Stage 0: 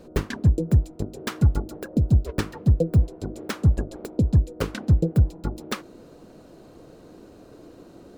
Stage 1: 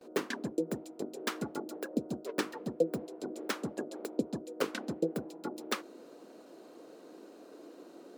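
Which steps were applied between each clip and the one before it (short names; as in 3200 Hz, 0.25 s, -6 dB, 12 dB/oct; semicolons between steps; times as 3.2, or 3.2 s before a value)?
HPF 260 Hz 24 dB/oct; gate with hold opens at -41 dBFS; gain -3.5 dB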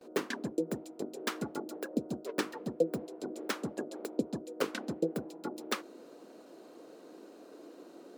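nothing audible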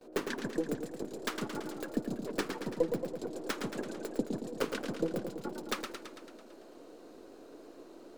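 half-wave gain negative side -3 dB; warbling echo 0.111 s, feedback 63%, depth 133 cents, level -6.5 dB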